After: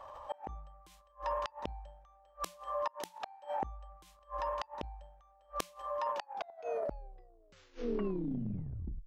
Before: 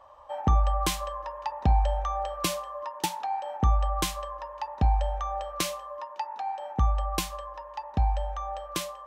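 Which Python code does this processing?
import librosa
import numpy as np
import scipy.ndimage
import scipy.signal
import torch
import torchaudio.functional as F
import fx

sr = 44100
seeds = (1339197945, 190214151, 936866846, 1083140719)

y = fx.tape_stop_end(x, sr, length_s=2.97)
y = fx.gate_flip(y, sr, shuts_db=-25.0, range_db=-37)
y = fx.transient(y, sr, attack_db=-3, sustain_db=10)
y = F.gain(torch.from_numpy(y), 2.5).numpy()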